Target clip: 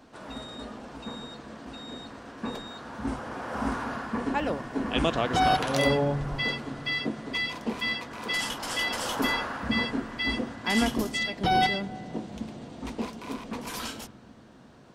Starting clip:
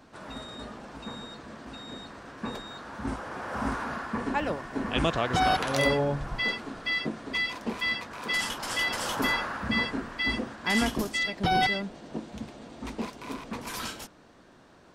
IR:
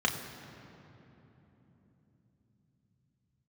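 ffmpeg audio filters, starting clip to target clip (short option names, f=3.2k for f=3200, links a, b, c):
-filter_complex "[0:a]asplit=2[a][b];[1:a]atrim=start_sample=2205,lowpass=f=4.4k:w=0.5412,lowpass=f=4.4k:w=1.3066,lowshelf=f=480:g=8[c];[b][c]afir=irnorm=-1:irlink=0,volume=-24.5dB[d];[a][d]amix=inputs=2:normalize=0"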